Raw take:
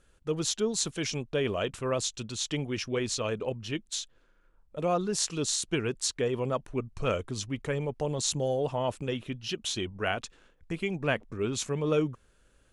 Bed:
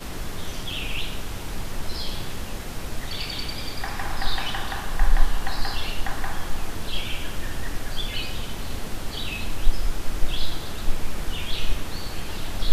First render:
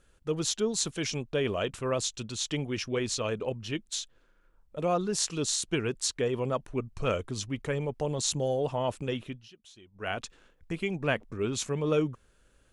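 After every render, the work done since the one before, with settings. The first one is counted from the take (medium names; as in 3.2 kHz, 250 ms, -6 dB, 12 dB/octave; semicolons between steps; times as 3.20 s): 9.21–10.20 s: dip -21.5 dB, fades 0.29 s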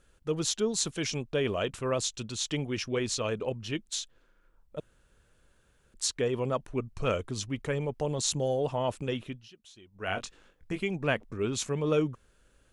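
4.80–5.94 s: room tone; 10.06–10.80 s: doubling 21 ms -7 dB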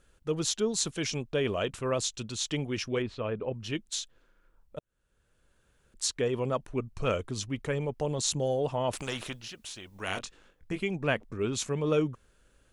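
3.02–3.54 s: distance through air 460 m; 4.79–6.24 s: fade in equal-power; 8.93–10.19 s: spectrum-flattening compressor 2:1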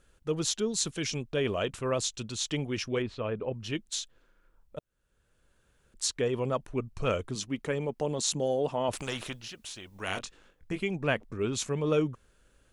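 0.50–1.37 s: dynamic bell 780 Hz, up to -6 dB, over -43 dBFS, Q 1.1; 7.35–8.89 s: resonant low shelf 140 Hz -7.5 dB, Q 1.5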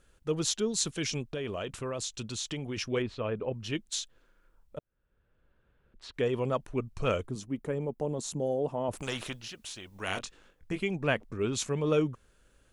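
1.26–2.77 s: compression, threshold -31 dBFS; 4.78–6.14 s: distance through air 390 m; 7.27–9.03 s: peaking EQ 3.5 kHz -12.5 dB 2.9 oct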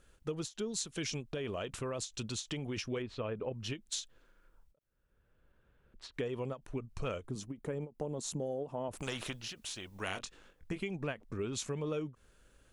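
compression 6:1, threshold -34 dBFS, peak gain reduction 12 dB; endings held to a fixed fall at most 280 dB/s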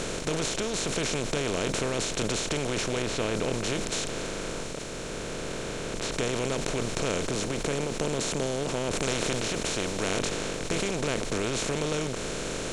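spectral levelling over time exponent 0.2; decay stretcher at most 30 dB/s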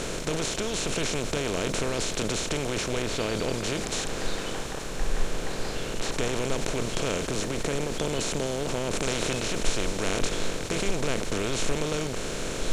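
add bed -10 dB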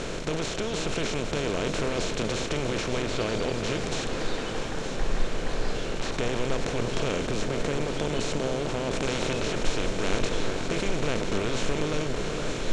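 distance through air 76 m; echo whose repeats swap between lows and highs 458 ms, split 1.9 kHz, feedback 78%, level -7 dB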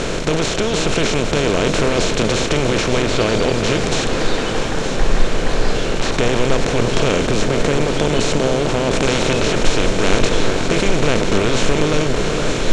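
trim +11.5 dB; peak limiter -1 dBFS, peak gain reduction 2 dB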